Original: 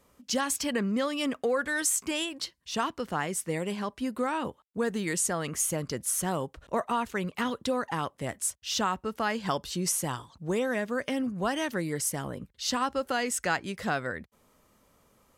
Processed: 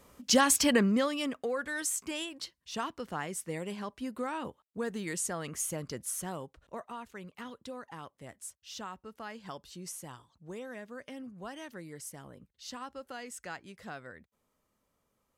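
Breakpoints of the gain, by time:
0.73 s +5 dB
1.37 s -6 dB
6 s -6 dB
6.91 s -14 dB

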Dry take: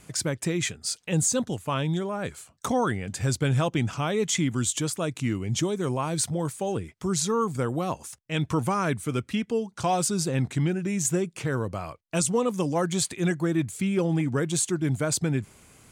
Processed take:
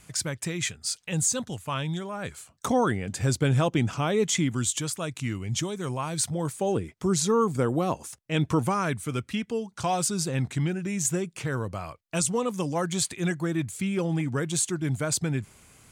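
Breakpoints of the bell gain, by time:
bell 350 Hz 2.2 oct
2.11 s -7 dB
2.75 s +2 dB
4.29 s +2 dB
4.85 s -6 dB
6.16 s -6 dB
6.67 s +3.5 dB
8.49 s +3.5 dB
8.9 s -3.5 dB

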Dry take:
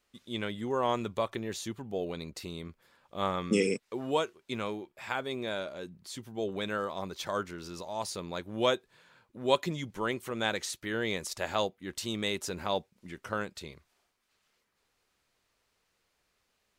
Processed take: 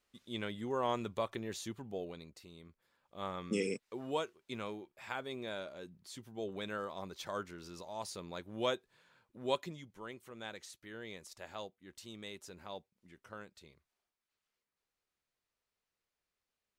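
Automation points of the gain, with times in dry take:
1.86 s -5 dB
2.45 s -15 dB
3.73 s -7 dB
9.48 s -7 dB
9.88 s -15 dB

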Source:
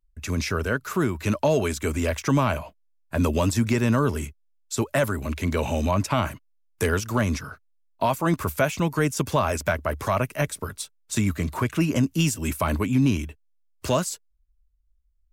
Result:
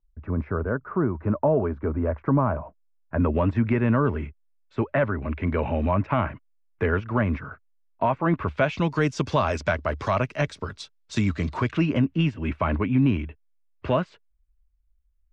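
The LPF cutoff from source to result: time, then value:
LPF 24 dB/oct
2.62 s 1300 Hz
3.59 s 2300 Hz
8.27 s 2300 Hz
8.9 s 5200 Hz
11.65 s 5200 Hz
12.06 s 2700 Hz

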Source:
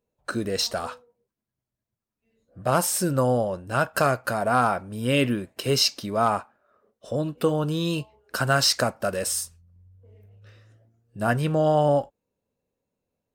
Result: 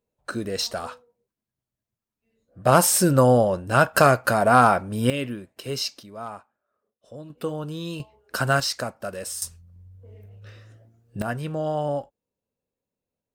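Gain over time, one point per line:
-1.5 dB
from 2.65 s +5.5 dB
from 5.1 s -7 dB
from 6.03 s -13.5 dB
from 7.3 s -6.5 dB
from 8 s +0.5 dB
from 8.6 s -6 dB
from 9.42 s +6 dB
from 11.22 s -6 dB

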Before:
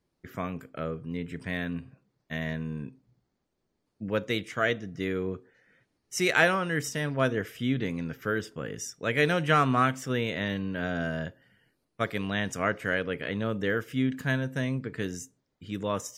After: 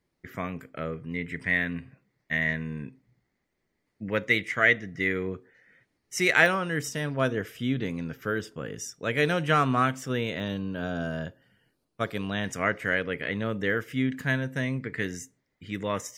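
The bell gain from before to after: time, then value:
bell 2000 Hz 0.41 oct
+7.5 dB
from 0.93 s +14.5 dB
from 5.28 s +7 dB
from 6.46 s -1 dB
from 10.4 s -12 dB
from 11.11 s -4.5 dB
from 12.44 s +6.5 dB
from 14.76 s +13 dB

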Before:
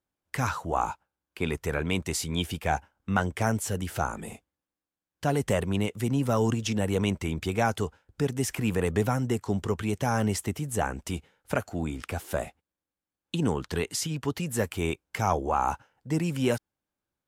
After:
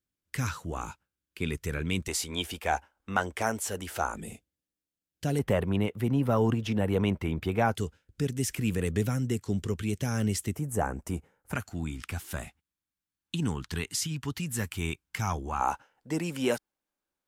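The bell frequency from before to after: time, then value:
bell -14 dB 1.4 oct
780 Hz
from 2.08 s 130 Hz
from 4.15 s 1000 Hz
from 5.39 s 7100 Hz
from 7.75 s 860 Hz
from 10.55 s 3600 Hz
from 11.53 s 550 Hz
from 15.61 s 99 Hz

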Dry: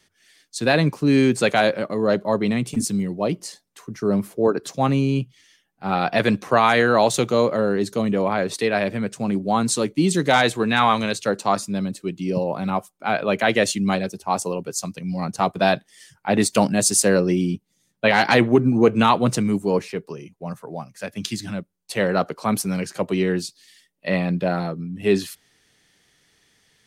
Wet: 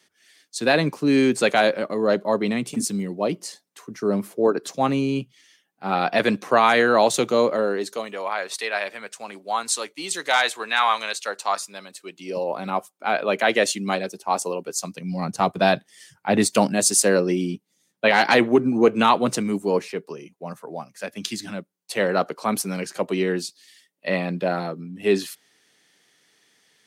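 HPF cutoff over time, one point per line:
7.45 s 210 Hz
8.18 s 830 Hz
11.92 s 830 Hz
12.65 s 290 Hz
14.68 s 290 Hz
15.34 s 110 Hz
16.37 s 110 Hz
16.79 s 230 Hz

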